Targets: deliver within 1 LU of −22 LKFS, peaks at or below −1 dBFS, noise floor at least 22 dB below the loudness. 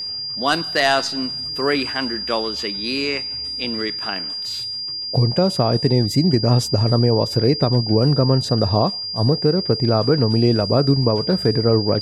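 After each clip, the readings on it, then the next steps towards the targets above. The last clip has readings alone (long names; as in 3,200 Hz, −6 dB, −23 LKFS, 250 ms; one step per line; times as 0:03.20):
interfering tone 4,800 Hz; level of the tone −25 dBFS; integrated loudness −19.0 LKFS; sample peak −3.0 dBFS; target loudness −22.0 LKFS
→ notch filter 4,800 Hz, Q 30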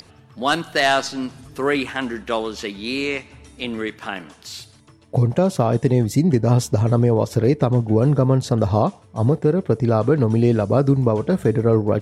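interfering tone none found; integrated loudness −19.5 LKFS; sample peak −3.5 dBFS; target loudness −22.0 LKFS
→ level −2.5 dB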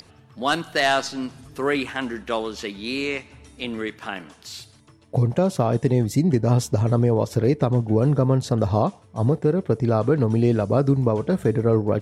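integrated loudness −22.0 LKFS; sample peak −6.0 dBFS; background noise floor −53 dBFS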